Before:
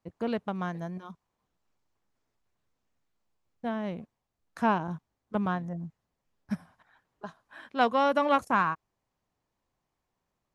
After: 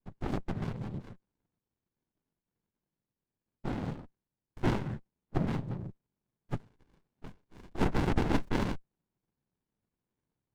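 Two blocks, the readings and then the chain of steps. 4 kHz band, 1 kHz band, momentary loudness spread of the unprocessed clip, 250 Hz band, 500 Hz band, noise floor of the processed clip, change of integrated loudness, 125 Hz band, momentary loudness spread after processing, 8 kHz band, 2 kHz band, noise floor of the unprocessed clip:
−4.5 dB, −12.0 dB, 19 LU, −2.0 dB, −7.5 dB, below −85 dBFS, −5.0 dB, +5.0 dB, 17 LU, can't be measured, −8.0 dB, −83 dBFS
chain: cochlear-implant simulation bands 6
windowed peak hold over 65 samples

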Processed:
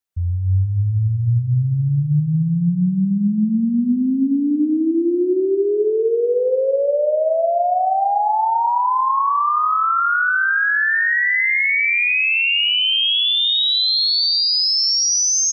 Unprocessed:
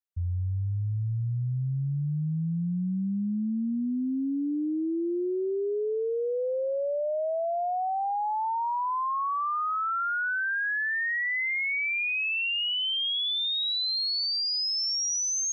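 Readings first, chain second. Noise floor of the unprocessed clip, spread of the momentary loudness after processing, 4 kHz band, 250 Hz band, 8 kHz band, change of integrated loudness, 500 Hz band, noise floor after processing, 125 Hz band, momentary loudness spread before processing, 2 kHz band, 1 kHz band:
−29 dBFS, 5 LU, +11.0 dB, +11.0 dB, can't be measured, +11.0 dB, +11.0 dB, −21 dBFS, +11.0 dB, 5 LU, +11.0 dB, +11.0 dB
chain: automatic gain control gain up to 13 dB
brickwall limiter −21.5 dBFS, peak gain reduction 9 dB
on a send: multi-tap delay 94/128/170/412/784 ms −14.5/−12/−19/−15/−17 dB
on the sum: level +6.5 dB

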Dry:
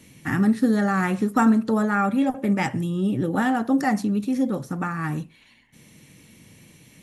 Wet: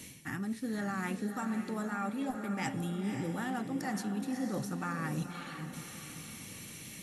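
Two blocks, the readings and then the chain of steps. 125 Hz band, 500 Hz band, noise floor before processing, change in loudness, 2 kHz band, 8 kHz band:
−11.0 dB, −13.5 dB, −55 dBFS, −14.0 dB, −11.0 dB, −2.5 dB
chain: high-shelf EQ 2,700 Hz +8.5 dB
reversed playback
downward compressor 16 to 1, threshold −33 dBFS, peak gain reduction 20.5 dB
reversed playback
feedback delay with all-pass diffusion 535 ms, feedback 41%, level −7 dB

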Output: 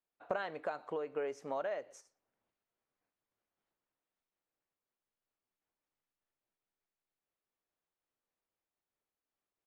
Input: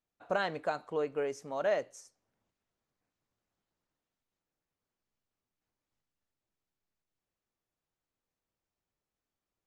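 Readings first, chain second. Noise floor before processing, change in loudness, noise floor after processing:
below −85 dBFS, −5.5 dB, below −85 dBFS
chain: noise gate −50 dBFS, range −7 dB
bass and treble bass −9 dB, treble −10 dB
downward compressor 5 to 1, threshold −40 dBFS, peak gain reduction 13 dB
slap from a distant wall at 20 metres, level −28 dB
amplitude modulation by smooth noise, depth 50%
level +7.5 dB

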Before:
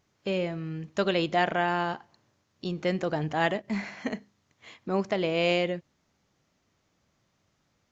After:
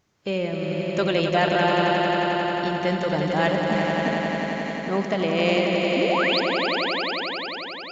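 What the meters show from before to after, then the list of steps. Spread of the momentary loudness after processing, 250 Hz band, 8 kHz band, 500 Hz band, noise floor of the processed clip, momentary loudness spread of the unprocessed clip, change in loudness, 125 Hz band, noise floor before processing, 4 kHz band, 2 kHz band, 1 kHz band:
7 LU, +7.5 dB, can't be measured, +7.5 dB, −35 dBFS, 11 LU, +6.0 dB, +6.5 dB, −74 dBFS, +10.0 dB, +8.5 dB, +8.0 dB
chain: sound drawn into the spectrogram rise, 0:05.96–0:06.40, 230–5,300 Hz −27 dBFS
echo that builds up and dies away 89 ms, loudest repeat 5, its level −6.5 dB
level +2.5 dB

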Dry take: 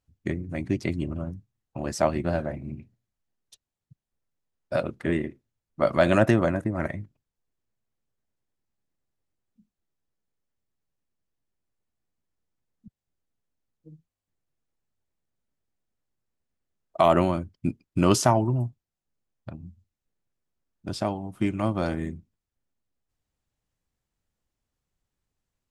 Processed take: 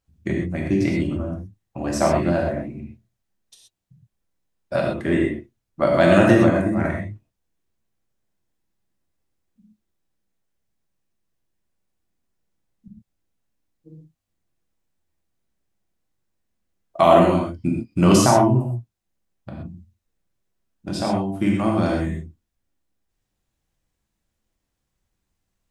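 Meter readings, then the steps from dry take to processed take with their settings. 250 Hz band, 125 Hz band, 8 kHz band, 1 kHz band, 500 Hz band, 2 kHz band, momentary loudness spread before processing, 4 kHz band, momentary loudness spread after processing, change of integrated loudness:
+7.5 dB, +5.5 dB, +6.0 dB, +6.0 dB, +6.0 dB, +6.0 dB, 21 LU, +5.5 dB, 20 LU, +6.5 dB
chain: reverb whose tail is shaped and stops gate 150 ms flat, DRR −1.5 dB
level +2 dB

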